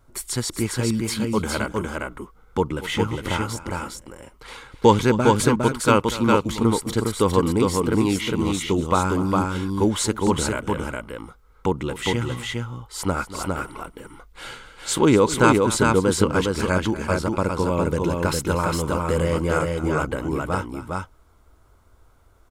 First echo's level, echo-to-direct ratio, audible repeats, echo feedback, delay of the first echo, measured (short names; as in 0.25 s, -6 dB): -15.5 dB, -3.0 dB, 2, no steady repeat, 0.24 s